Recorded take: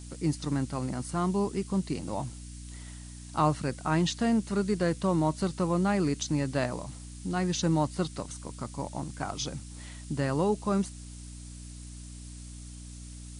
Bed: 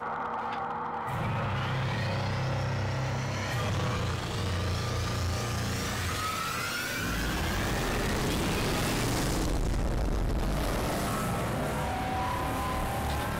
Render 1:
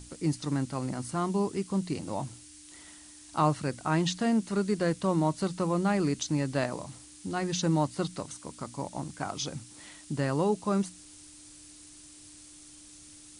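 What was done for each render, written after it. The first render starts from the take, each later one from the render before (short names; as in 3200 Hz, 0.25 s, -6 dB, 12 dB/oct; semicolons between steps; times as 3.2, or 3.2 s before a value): notches 60/120/180/240 Hz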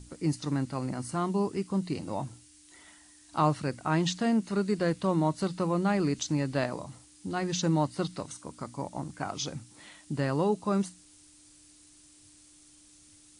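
noise print and reduce 6 dB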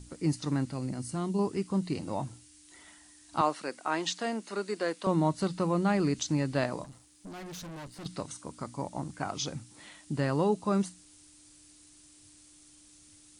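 0.72–1.39 bell 1100 Hz -9 dB 2 oct; 3.41–5.07 Bessel high-pass 400 Hz, order 4; 6.84–8.06 tube stage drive 41 dB, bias 0.75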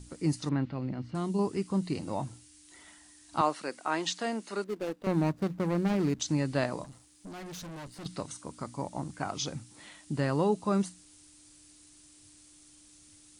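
0.49–1.15 LPF 3500 Hz 24 dB/oct; 4.64–6.2 median filter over 41 samples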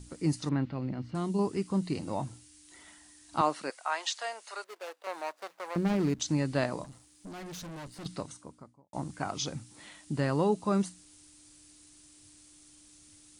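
3.7–5.76 HPF 610 Hz 24 dB/oct; 8.07–8.93 studio fade out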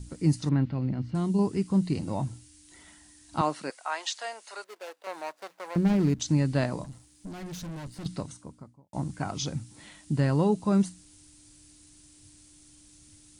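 tone controls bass +8 dB, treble +1 dB; notch 1200 Hz, Q 19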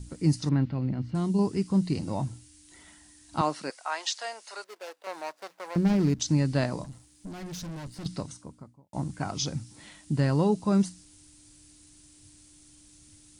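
dynamic EQ 5200 Hz, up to +5 dB, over -58 dBFS, Q 2.5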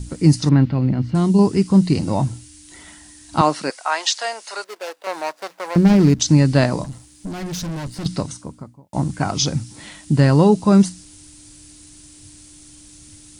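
gain +11 dB; limiter -3 dBFS, peak gain reduction 1 dB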